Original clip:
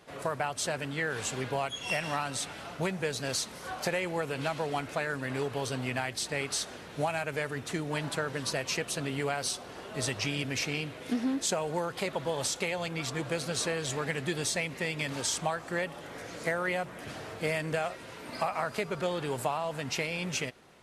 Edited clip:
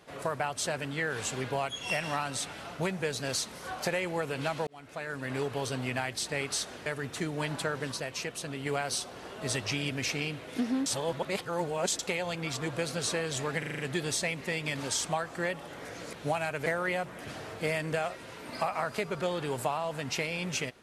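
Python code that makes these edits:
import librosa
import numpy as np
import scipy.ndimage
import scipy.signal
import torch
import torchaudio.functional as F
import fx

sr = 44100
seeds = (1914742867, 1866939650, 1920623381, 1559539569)

y = fx.edit(x, sr, fx.fade_in_span(start_s=4.67, length_s=0.68),
    fx.move(start_s=6.86, length_s=0.53, to_s=16.46),
    fx.clip_gain(start_s=8.45, length_s=0.74, db=-4.0),
    fx.reverse_span(start_s=11.39, length_s=1.13),
    fx.stutter(start_s=14.12, slice_s=0.04, count=6), tone=tone)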